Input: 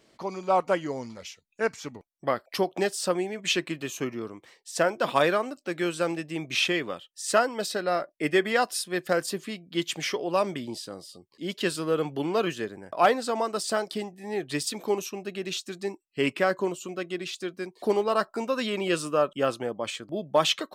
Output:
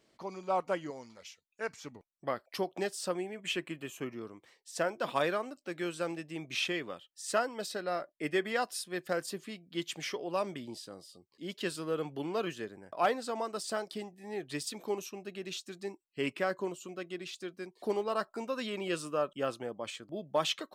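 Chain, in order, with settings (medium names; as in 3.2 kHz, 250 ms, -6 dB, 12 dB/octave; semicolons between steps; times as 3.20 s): 0.90–1.69 s: bass shelf 350 Hz -9 dB; 3.21–4.10 s: time-frequency box 3.4–7 kHz -7 dB; trim -8 dB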